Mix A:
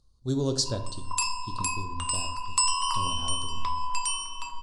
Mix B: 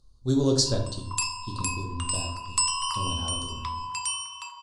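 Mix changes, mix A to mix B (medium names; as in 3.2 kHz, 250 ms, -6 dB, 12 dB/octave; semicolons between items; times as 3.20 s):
speech: send +8.5 dB; background: add high-pass 1 kHz 24 dB/octave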